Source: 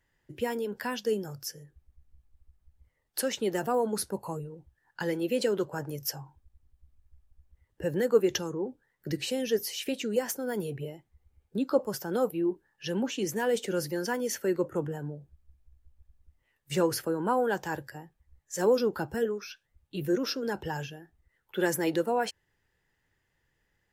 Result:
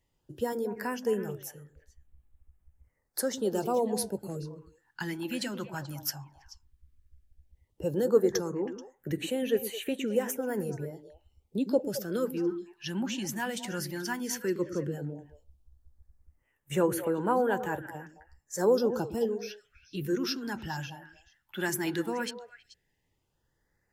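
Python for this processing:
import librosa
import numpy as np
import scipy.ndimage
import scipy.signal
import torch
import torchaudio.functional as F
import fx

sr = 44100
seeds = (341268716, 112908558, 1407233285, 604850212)

y = fx.echo_stepped(x, sr, ms=108, hz=260.0, octaves=1.4, feedback_pct=70, wet_db=-6)
y = fx.filter_lfo_notch(y, sr, shape='sine', hz=0.13, low_hz=430.0, high_hz=5300.0, q=1.0)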